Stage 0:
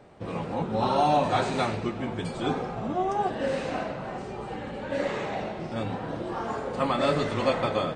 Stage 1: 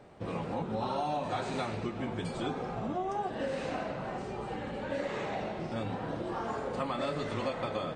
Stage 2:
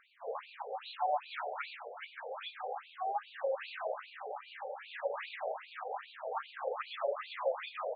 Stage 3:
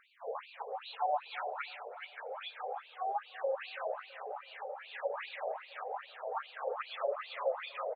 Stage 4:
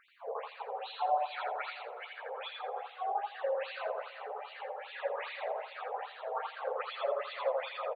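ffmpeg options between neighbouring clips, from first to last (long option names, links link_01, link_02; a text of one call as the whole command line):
ffmpeg -i in.wav -af "acompressor=threshold=-29dB:ratio=4,volume=-2dB" out.wav
ffmpeg -i in.wav -af "afftfilt=real='re*between(b*sr/1024,570*pow(3400/570,0.5+0.5*sin(2*PI*2.5*pts/sr))/1.41,570*pow(3400/570,0.5+0.5*sin(2*PI*2.5*pts/sr))*1.41)':imag='im*between(b*sr/1024,570*pow(3400/570,0.5+0.5*sin(2*PI*2.5*pts/sr))/1.41,570*pow(3400/570,0.5+0.5*sin(2*PI*2.5*pts/sr))*1.41)':win_size=1024:overlap=0.75,volume=3dB" out.wav
ffmpeg -i in.wav -filter_complex "[0:a]asplit=2[link_01][link_02];[link_02]adelay=329,lowpass=frequency=1100:poles=1,volume=-16dB,asplit=2[link_03][link_04];[link_04]adelay=329,lowpass=frequency=1100:poles=1,volume=0.4,asplit=2[link_05][link_06];[link_06]adelay=329,lowpass=frequency=1100:poles=1,volume=0.4,asplit=2[link_07][link_08];[link_08]adelay=329,lowpass=frequency=1100:poles=1,volume=0.4[link_09];[link_01][link_03][link_05][link_07][link_09]amix=inputs=5:normalize=0" out.wav
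ffmpeg -i in.wav -af "aecho=1:1:83|166|249:0.708|0.127|0.0229" out.wav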